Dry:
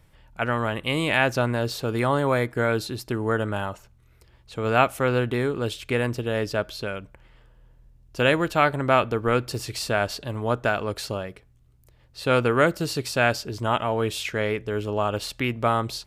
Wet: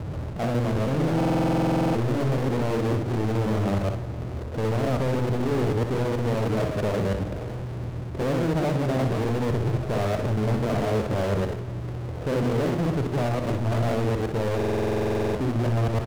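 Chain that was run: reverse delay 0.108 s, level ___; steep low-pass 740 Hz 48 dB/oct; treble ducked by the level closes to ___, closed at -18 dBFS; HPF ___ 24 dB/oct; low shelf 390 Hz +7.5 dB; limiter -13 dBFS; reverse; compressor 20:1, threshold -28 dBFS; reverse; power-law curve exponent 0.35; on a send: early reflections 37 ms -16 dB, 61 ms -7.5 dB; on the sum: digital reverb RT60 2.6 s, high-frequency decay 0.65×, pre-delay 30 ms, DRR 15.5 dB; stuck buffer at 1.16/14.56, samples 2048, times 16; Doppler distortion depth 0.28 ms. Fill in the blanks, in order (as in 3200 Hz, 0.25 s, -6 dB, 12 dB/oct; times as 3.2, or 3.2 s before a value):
0 dB, 490 Hz, 74 Hz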